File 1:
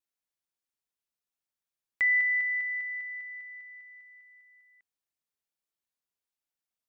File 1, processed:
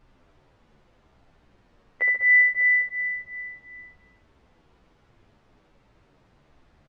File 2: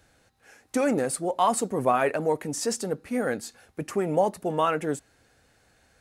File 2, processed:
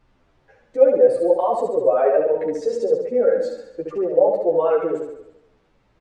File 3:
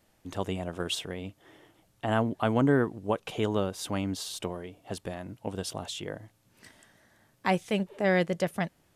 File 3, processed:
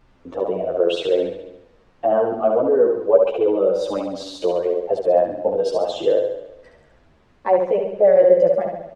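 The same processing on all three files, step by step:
spectral dynamics exaggerated over time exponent 1.5
noise gate with hold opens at −59 dBFS
tilt shelving filter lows +7.5 dB, about 800 Hz
reversed playback
downward compressor, threshold −33 dBFS
reversed playback
brickwall limiter −35 dBFS
high-pass with resonance 520 Hz, resonance Q 4.9
background noise pink −79 dBFS
head-to-tape spacing loss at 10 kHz 27 dB
on a send: flutter between parallel walls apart 11.9 metres, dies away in 0.85 s
on the sum: barber-pole flanger 10.3 ms −2.8 Hz
loudness normalisation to −19 LKFS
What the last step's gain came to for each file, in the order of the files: +23.0, +22.0, +26.5 decibels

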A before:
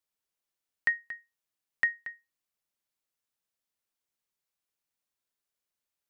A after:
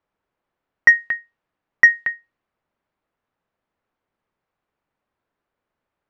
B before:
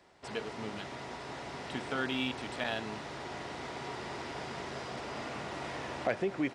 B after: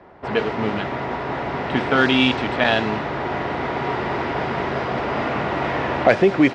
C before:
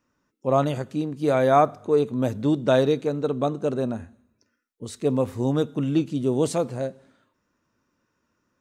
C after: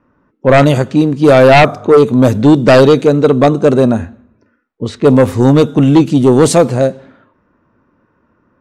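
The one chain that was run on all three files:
sine wavefolder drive 9 dB, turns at −6 dBFS
low-pass that shuts in the quiet parts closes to 1,400 Hz, open at −10.5 dBFS
level +4.5 dB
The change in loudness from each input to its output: +15.5, +16.5, +14.5 LU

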